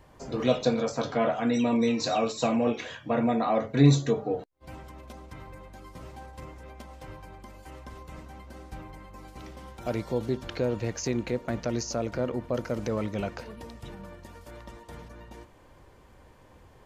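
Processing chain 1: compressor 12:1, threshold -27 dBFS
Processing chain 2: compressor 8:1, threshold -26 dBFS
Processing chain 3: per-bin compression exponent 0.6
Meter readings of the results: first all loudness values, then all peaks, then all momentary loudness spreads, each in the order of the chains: -35.0, -33.5, -26.5 LUFS; -15.5, -14.5, -6.0 dBFS; 15, 16, 13 LU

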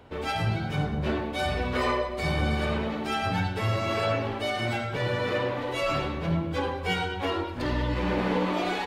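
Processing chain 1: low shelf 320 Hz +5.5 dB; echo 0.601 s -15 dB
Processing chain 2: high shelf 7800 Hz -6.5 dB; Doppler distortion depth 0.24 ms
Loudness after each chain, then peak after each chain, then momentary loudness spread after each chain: -25.5, -28.5 LUFS; -10.5, -14.0 dBFS; 4, 3 LU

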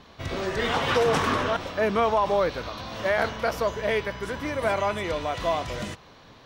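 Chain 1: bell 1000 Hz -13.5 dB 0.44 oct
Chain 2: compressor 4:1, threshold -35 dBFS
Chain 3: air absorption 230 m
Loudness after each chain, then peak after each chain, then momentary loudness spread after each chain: -28.0, -37.0, -27.0 LUFS; -13.0, -23.0, -12.0 dBFS; 10, 5, 11 LU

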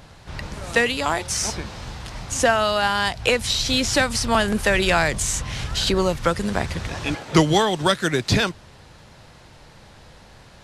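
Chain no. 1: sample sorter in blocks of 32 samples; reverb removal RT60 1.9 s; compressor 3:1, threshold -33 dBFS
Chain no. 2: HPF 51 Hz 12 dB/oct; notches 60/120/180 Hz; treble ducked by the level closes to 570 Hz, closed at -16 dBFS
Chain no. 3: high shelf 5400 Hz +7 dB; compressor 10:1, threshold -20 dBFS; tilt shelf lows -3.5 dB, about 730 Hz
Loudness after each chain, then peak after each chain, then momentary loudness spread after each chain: -34.0, -25.5, -23.0 LUFS; -16.0, -6.5, -4.5 dBFS; 11, 12, 10 LU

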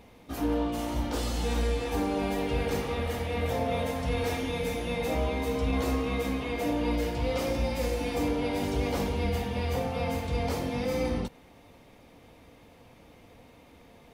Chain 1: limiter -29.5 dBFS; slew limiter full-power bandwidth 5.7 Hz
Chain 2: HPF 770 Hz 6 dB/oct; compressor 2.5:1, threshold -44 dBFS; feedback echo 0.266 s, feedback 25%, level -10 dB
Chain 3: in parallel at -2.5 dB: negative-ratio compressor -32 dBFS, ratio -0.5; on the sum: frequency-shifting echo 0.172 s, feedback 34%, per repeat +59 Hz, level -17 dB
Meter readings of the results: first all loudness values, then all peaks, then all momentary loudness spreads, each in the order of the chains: -40.0, -42.5, -27.0 LUFS; -29.5, -29.5, -13.5 dBFS; 15, 16, 1 LU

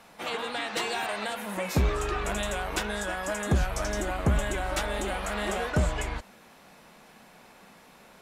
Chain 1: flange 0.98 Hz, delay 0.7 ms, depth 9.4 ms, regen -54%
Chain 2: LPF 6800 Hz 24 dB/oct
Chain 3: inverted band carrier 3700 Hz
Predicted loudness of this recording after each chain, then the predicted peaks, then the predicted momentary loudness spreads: -34.0, -30.0, -25.0 LUFS; -18.0, -14.5, -12.5 dBFS; 6, 6, 10 LU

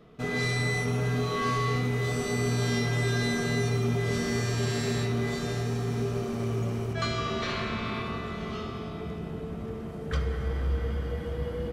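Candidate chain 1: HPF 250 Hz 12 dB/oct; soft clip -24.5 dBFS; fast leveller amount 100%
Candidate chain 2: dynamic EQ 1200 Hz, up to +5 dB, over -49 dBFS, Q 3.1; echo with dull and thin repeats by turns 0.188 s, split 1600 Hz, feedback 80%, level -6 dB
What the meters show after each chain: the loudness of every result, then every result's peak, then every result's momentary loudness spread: -29.5, -28.0 LUFS; -19.0, -14.0 dBFS; 2, 8 LU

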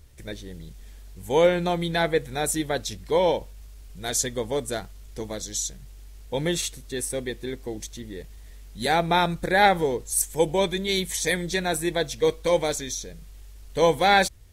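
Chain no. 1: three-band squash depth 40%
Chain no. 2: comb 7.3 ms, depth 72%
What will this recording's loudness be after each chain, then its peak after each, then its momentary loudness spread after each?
-25.5, -23.0 LUFS; -7.5, -5.0 dBFS; 19, 18 LU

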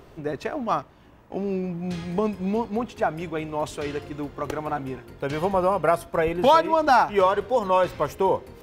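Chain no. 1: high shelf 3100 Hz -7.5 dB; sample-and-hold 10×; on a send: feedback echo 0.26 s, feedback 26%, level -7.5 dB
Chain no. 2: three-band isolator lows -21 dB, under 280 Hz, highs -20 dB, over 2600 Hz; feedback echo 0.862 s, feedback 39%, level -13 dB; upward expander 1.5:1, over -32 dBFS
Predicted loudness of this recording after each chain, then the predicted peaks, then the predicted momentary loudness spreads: -23.5, -26.0 LUFS; -7.0, -7.0 dBFS; 13, 21 LU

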